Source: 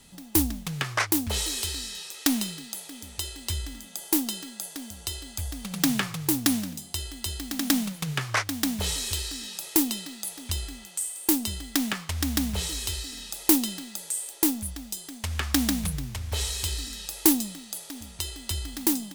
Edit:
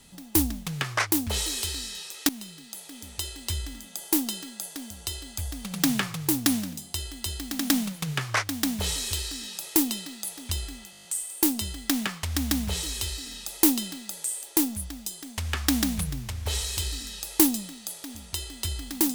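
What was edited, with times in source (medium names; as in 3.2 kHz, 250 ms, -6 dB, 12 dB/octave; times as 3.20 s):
2.29–3.08 s: fade in, from -16.5 dB
10.91 s: stutter 0.02 s, 8 plays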